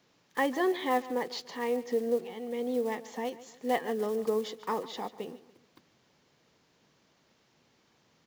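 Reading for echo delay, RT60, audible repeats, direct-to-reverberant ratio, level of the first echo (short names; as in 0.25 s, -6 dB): 0.145 s, none, 3, none, -17.0 dB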